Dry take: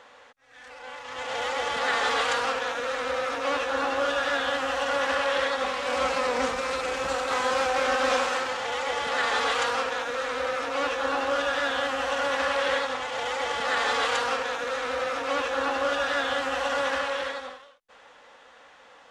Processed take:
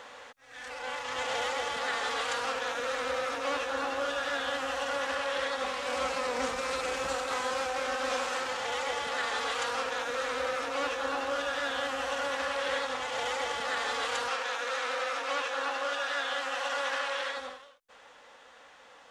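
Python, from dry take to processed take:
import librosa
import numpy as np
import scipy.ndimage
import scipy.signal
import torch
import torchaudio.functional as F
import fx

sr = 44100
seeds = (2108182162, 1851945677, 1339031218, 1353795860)

y = fx.weighting(x, sr, curve='A', at=(14.28, 17.37))
y = fx.rider(y, sr, range_db=10, speed_s=0.5)
y = fx.high_shelf(y, sr, hz=6000.0, db=6.0)
y = y * librosa.db_to_amplitude(-5.5)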